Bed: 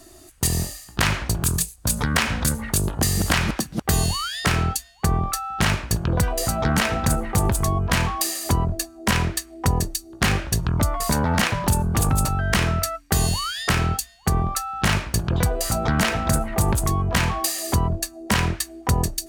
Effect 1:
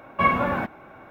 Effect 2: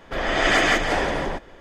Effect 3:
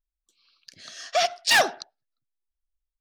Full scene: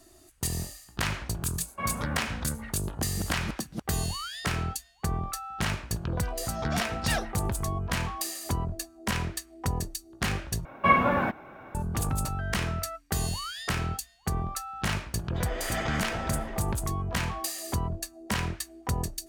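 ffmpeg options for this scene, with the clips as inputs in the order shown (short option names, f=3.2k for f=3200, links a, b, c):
-filter_complex "[1:a]asplit=2[a][b];[0:a]volume=-9dB,asplit=2[c][d];[c]atrim=end=10.654[e];[b]atrim=end=1.1,asetpts=PTS-STARTPTS,volume=-0.5dB[f];[d]atrim=start=11.746[g];[a]atrim=end=1.1,asetpts=PTS-STARTPTS,volume=-13.5dB,afade=t=in:d=0.004:c=hsin,afade=t=out:st=1.096:d=0.004:c=hsin,adelay=1590[h];[3:a]atrim=end=3,asetpts=PTS-STARTPTS,volume=-12.5dB,afade=t=in:d=0.004:c=hsin,afade=t=out:st=2.996:d=0.004:c=hsin,adelay=245637S[i];[2:a]atrim=end=1.6,asetpts=PTS-STARTPTS,volume=-16dB,afade=t=in:d=0.004:c=hsin,afade=t=out:st=1.596:d=0.004:c=hsin,adelay=15230[j];[e][f]acrossfade=d=0.004:c1=hsin:c2=hsin[k];[k][g]acrossfade=d=0.004:c1=hsin:c2=hsin[l];[l][h][i][j]amix=inputs=4:normalize=0"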